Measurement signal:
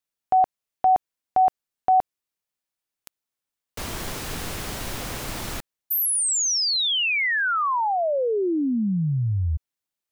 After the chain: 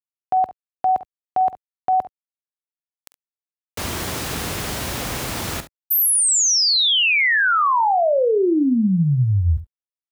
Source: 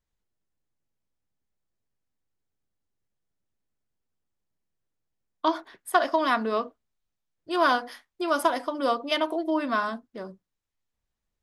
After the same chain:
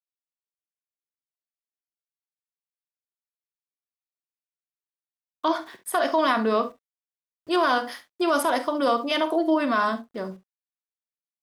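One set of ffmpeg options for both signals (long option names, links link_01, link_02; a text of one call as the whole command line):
ffmpeg -i in.wav -af "highpass=frequency=46:width=0.5412,highpass=frequency=46:width=1.3066,alimiter=limit=-19dB:level=0:latency=1:release=23,aeval=exprs='val(0)*gte(abs(val(0)),0.00141)':channel_layout=same,aecho=1:1:47|69:0.211|0.15,volume=5.5dB" out.wav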